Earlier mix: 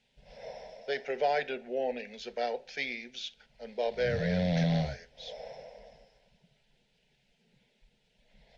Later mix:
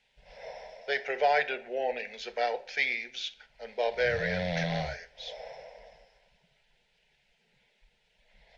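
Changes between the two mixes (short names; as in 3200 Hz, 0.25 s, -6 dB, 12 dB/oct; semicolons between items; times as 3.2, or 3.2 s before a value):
speech: send +7.5 dB; master: add ten-band EQ 125 Hz -4 dB, 250 Hz -9 dB, 1000 Hz +4 dB, 2000 Hz +5 dB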